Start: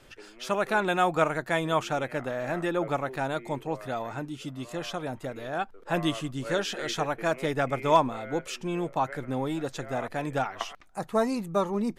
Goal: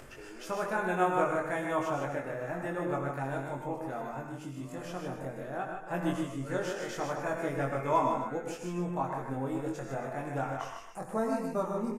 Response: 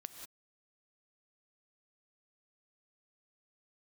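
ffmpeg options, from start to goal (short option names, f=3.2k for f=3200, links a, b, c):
-filter_complex "[0:a]equalizer=f=3.7k:w=1.4:g=-12,acompressor=mode=upward:threshold=-34dB:ratio=2.5,asplit=2[a][b];[b]adelay=22,volume=-3dB[c];[a][c]amix=inputs=2:normalize=0,aecho=1:1:153:0.501[d];[1:a]atrim=start_sample=2205,asetrate=66150,aresample=44100[e];[d][e]afir=irnorm=-1:irlink=0,volume=1.5dB"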